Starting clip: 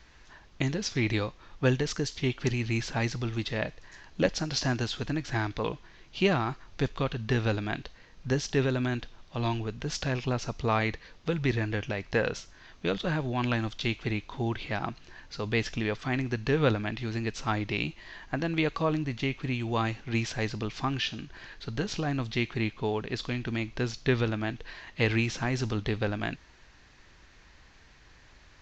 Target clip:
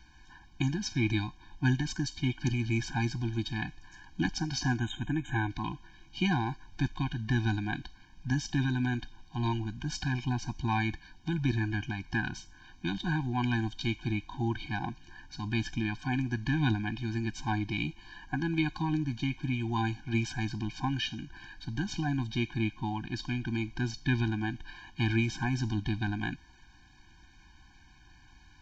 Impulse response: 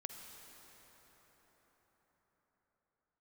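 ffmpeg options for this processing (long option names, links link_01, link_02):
-filter_complex "[0:a]asplit=3[link_01][link_02][link_03];[link_01]afade=type=out:start_time=4.78:duration=0.02[link_04];[link_02]asuperstop=centerf=4900:order=20:qfactor=2,afade=type=in:start_time=4.78:duration=0.02,afade=type=out:start_time=5.48:duration=0.02[link_05];[link_03]afade=type=in:start_time=5.48:duration=0.02[link_06];[link_04][link_05][link_06]amix=inputs=3:normalize=0,afftfilt=real='re*eq(mod(floor(b*sr/1024/360),2),0)':imag='im*eq(mod(floor(b*sr/1024/360),2),0)':win_size=1024:overlap=0.75"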